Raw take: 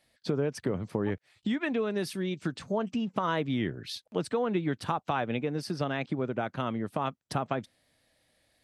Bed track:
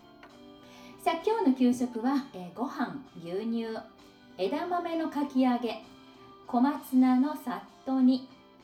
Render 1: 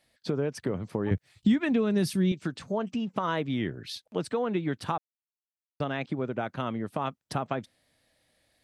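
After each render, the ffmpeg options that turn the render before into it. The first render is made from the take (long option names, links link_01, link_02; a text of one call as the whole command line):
ffmpeg -i in.wav -filter_complex "[0:a]asettb=1/sr,asplit=3[link_01][link_02][link_03];[link_01]atrim=end=1.114[link_04];[link_02]atrim=start=1.11:end=2.32,asetpts=PTS-STARTPTS,afade=type=in:duration=0.004:curve=qsin,afade=type=out:start_time=1.206:duration=0.004:curve=qsin,bass=frequency=250:gain=13,treble=frequency=4000:gain=5[link_05];[link_03]atrim=start=2.316[link_06];[link_04][link_05]acrossfade=duration=0.004:curve1=hsin:curve2=qsin[link_07];[link_07][link_06]acrossfade=duration=0.004:curve1=qsin:curve2=hsin,asplit=3[link_08][link_09][link_10];[link_08]atrim=end=4.98,asetpts=PTS-STARTPTS,afade=type=out:start_time=4.976:duration=0.004:curve=hsin[link_11];[link_09]atrim=start=4.98:end=5.8,asetpts=PTS-STARTPTS,volume=0[link_12];[link_10]atrim=start=5.8,asetpts=PTS-STARTPTS,afade=type=in:duration=0.004:curve=hsin[link_13];[link_11][link_12][link_13]concat=n=3:v=0:a=1" out.wav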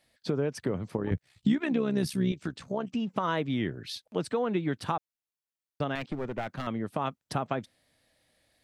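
ffmpeg -i in.wav -filter_complex "[0:a]asettb=1/sr,asplit=3[link_01][link_02][link_03];[link_01]atrim=end=0.974[link_04];[link_02]atrim=start=0.97:end=2.95,asetpts=PTS-STARTPTS,afade=type=in:duration=0.004:curve=qsin,afade=type=out:start_time=1.976:duration=0.004:curve=qsin,tremolo=f=66:d=0.571[link_05];[link_03]atrim=start=2.946[link_06];[link_04][link_05]acrossfade=duration=0.004:curve1=hsin:curve2=qsin[link_07];[link_07][link_06]acrossfade=duration=0.004:curve1=qsin:curve2=hsin,asettb=1/sr,asplit=3[link_08][link_09][link_10];[link_08]atrim=end=5.954[link_11];[link_09]atrim=start=5.95:end=6.67,asetpts=PTS-STARTPTS,afade=type=in:duration=0.004:curve=qsin,afade=type=out:start_time=0.716:duration=0.004:curve=qsin,aeval=exprs='clip(val(0),-1,0.0211)':channel_layout=same[link_12];[link_10]atrim=start=6.666[link_13];[link_11][link_12]acrossfade=duration=0.004:curve1=hsin:curve2=qsin[link_14];[link_14][link_13]acrossfade=duration=0.004:curve1=qsin:curve2=hsin" out.wav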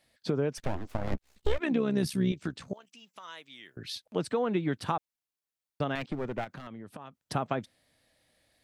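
ffmpeg -i in.wav -filter_complex "[0:a]asplit=3[link_01][link_02][link_03];[link_01]afade=type=out:start_time=0.57:duration=0.02[link_04];[link_02]aeval=exprs='abs(val(0))':channel_layout=same,afade=type=in:start_time=0.57:duration=0.02,afade=type=out:start_time=1.58:duration=0.02[link_05];[link_03]afade=type=in:start_time=1.58:duration=0.02[link_06];[link_04][link_05][link_06]amix=inputs=3:normalize=0,asettb=1/sr,asplit=3[link_07][link_08][link_09];[link_07]atrim=end=2.734[link_10];[link_08]atrim=start=2.73:end=3.77,asetpts=PTS-STARTPTS,afade=type=in:duration=0.004:curve=qsin,afade=type=out:start_time=1.036:duration=0.004:curve=qsin,aderivative[link_11];[link_09]atrim=start=3.766[link_12];[link_10][link_11]acrossfade=duration=0.004:curve1=hsin:curve2=qsin[link_13];[link_13][link_12]acrossfade=duration=0.004:curve1=qsin:curve2=hsin,asettb=1/sr,asplit=3[link_14][link_15][link_16];[link_14]atrim=end=6.444[link_17];[link_15]atrim=start=6.44:end=7.18,asetpts=PTS-STARTPTS,afade=type=in:duration=0.004:curve=qsin,afade=type=out:start_time=0.736:duration=0.004:curve=qsin,acompressor=threshold=-39dB:ratio=12:attack=3.2:release=140:knee=1:detection=peak[link_18];[link_16]atrim=start=7.176[link_19];[link_17][link_18]acrossfade=duration=0.004:curve1=hsin:curve2=qsin[link_20];[link_20][link_19]acrossfade=duration=0.004:curve1=qsin:curve2=hsin" out.wav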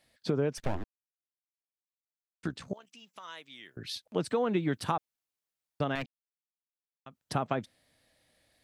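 ffmpeg -i in.wav -filter_complex "[0:a]asettb=1/sr,asplit=3[link_01][link_02][link_03];[link_01]atrim=end=4.274[link_04];[link_02]atrim=start=4.27:end=4.91,asetpts=PTS-STARTPTS,afade=type=in:duration=0.004:curve=qsin,afade=type=out:start_time=0.636:duration=0.004:curve=qsin,highshelf=frequency=7500:gain=7.5[link_05];[link_03]atrim=start=4.906[link_06];[link_04][link_05]acrossfade=duration=0.004:curve1=hsin:curve2=qsin[link_07];[link_07][link_06]acrossfade=duration=0.004:curve1=qsin:curve2=hsin,asplit=5[link_08][link_09][link_10][link_11][link_12];[link_08]atrim=end=0.84,asetpts=PTS-STARTPTS,afade=type=out:start_time=0.836:duration=0.004:curve=hsin[link_13];[link_09]atrim=start=0.84:end=2.43,asetpts=PTS-STARTPTS,volume=0[link_14];[link_10]atrim=start=2.43:end=6.06,asetpts=PTS-STARTPTS,afade=type=in:duration=0.004:curve=hsin,afade=type=out:start_time=3.626:duration=0.004:curve=hsin[link_15];[link_11]atrim=start=6.06:end=7.06,asetpts=PTS-STARTPTS,volume=0[link_16];[link_12]atrim=start=7.06,asetpts=PTS-STARTPTS,afade=type=in:duration=0.004:curve=hsin[link_17];[link_13][link_14][link_15][link_16][link_17]concat=n=5:v=0:a=1" out.wav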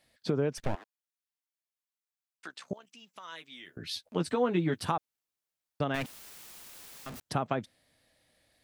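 ffmpeg -i in.wav -filter_complex "[0:a]asettb=1/sr,asplit=3[link_01][link_02][link_03];[link_01]atrim=end=0.754[link_04];[link_02]atrim=start=0.75:end=2.71,asetpts=PTS-STARTPTS,afade=type=in:duration=0.004:curve=qsin,afade=type=out:start_time=1.956:duration=0.004:curve=qsin,highpass=780[link_05];[link_03]atrim=start=2.706[link_06];[link_04][link_05]acrossfade=duration=0.004:curve1=hsin:curve2=qsin[link_07];[link_07][link_06]acrossfade=duration=0.004:curve1=qsin:curve2=hsin,asettb=1/sr,asplit=3[link_08][link_09][link_10];[link_08]atrim=end=3.314[link_11];[link_09]atrim=start=3.31:end=4.89,asetpts=PTS-STARTPTS,afade=type=in:duration=0.004:curve=qsin,afade=type=out:start_time=1.576:duration=0.004:curve=qsin,asplit=2[link_12][link_13];[link_13]adelay=12,volume=-5.5dB[link_14];[link_12][link_14]amix=inputs=2:normalize=0,atrim=end_sample=69678[link_15];[link_10]atrim=start=4.886[link_16];[link_11][link_15]acrossfade=duration=0.004:curve1=hsin:curve2=qsin[link_17];[link_17][link_16]acrossfade=duration=0.004:curve1=qsin:curve2=hsin,asettb=1/sr,asplit=3[link_18][link_19][link_20];[link_18]atrim=end=5.944[link_21];[link_19]atrim=start=5.94:end=7.2,asetpts=PTS-STARTPTS,afade=type=in:duration=0.004:curve=qsin,afade=type=out:start_time=1.256:duration=0.004:curve=qsin,aeval=exprs='val(0)+0.5*0.0126*sgn(val(0))':channel_layout=same[link_22];[link_20]atrim=start=7.196[link_23];[link_21][link_22]acrossfade=duration=0.004:curve1=hsin:curve2=qsin[link_24];[link_24][link_23]acrossfade=duration=0.004:curve1=qsin:curve2=hsin" out.wav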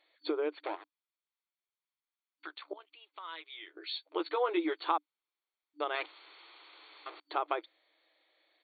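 ffmpeg -i in.wav -af "afftfilt=real='re*between(b*sr/4096,300,4500)':imag='im*between(b*sr/4096,300,4500)':win_size=4096:overlap=0.75,aecho=1:1:0.9:0.34" out.wav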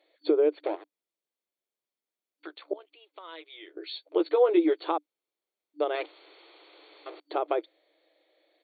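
ffmpeg -i in.wav -af "highpass=250,lowshelf=frequency=750:width_type=q:width=1.5:gain=9" out.wav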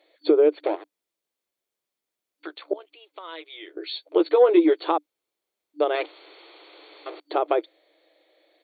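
ffmpeg -i in.wav -af "acontrast=43" out.wav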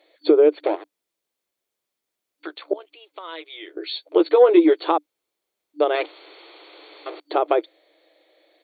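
ffmpeg -i in.wav -af "volume=3dB" out.wav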